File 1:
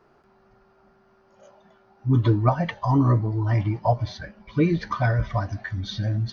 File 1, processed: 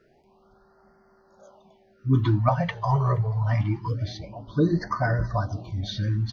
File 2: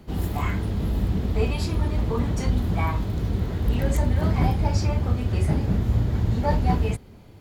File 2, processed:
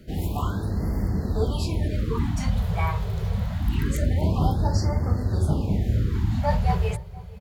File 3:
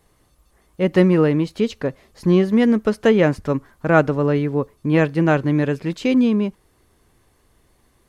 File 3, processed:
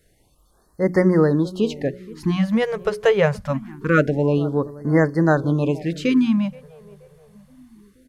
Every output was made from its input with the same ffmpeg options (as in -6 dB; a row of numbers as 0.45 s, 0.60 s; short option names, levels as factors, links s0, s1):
-filter_complex "[0:a]bandreject=f=60:t=h:w=6,bandreject=f=120:t=h:w=6,bandreject=f=180:t=h:w=6,bandreject=f=240:t=h:w=6,bandreject=f=300:t=h:w=6,bandreject=f=360:t=h:w=6,bandreject=f=420:t=h:w=6,asplit=2[s0][s1];[s1]adelay=476,lowpass=f=1000:p=1,volume=0.119,asplit=2[s2][s3];[s3]adelay=476,lowpass=f=1000:p=1,volume=0.52,asplit=2[s4][s5];[s5]adelay=476,lowpass=f=1000:p=1,volume=0.52,asplit=2[s6][s7];[s7]adelay=476,lowpass=f=1000:p=1,volume=0.52[s8];[s0][s2][s4][s6][s8]amix=inputs=5:normalize=0,afftfilt=real='re*(1-between(b*sr/1024,250*pow(3100/250,0.5+0.5*sin(2*PI*0.25*pts/sr))/1.41,250*pow(3100/250,0.5+0.5*sin(2*PI*0.25*pts/sr))*1.41))':imag='im*(1-between(b*sr/1024,250*pow(3100/250,0.5+0.5*sin(2*PI*0.25*pts/sr))/1.41,250*pow(3100/250,0.5+0.5*sin(2*PI*0.25*pts/sr))*1.41))':win_size=1024:overlap=0.75"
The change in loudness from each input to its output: -2.0 LU, -1.0 LU, -1.5 LU